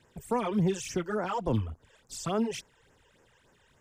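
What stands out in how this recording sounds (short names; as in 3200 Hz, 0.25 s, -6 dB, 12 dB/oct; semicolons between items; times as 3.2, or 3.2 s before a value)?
phasing stages 12, 3.5 Hz, lowest notch 210–3900 Hz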